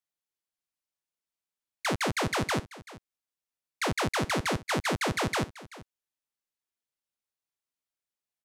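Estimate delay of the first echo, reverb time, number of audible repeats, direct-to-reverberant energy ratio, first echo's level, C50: 0.384 s, none, 1, none, -18.0 dB, none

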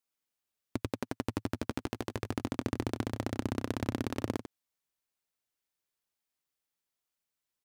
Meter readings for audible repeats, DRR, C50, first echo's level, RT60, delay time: 1, none, none, -11.0 dB, none, 94 ms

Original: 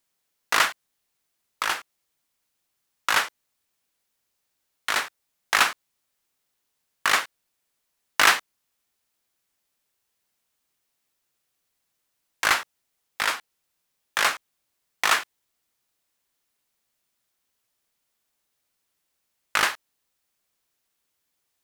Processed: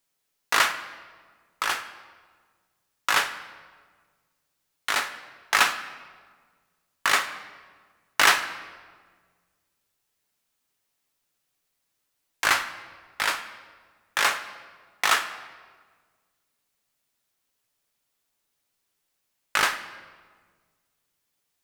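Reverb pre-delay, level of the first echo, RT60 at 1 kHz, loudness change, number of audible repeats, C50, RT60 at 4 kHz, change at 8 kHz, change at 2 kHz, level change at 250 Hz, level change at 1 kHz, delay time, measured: 7 ms, none, 1.5 s, -1.0 dB, none, 11.5 dB, 1.1 s, -0.5 dB, -0.5 dB, 0.0 dB, 0.0 dB, none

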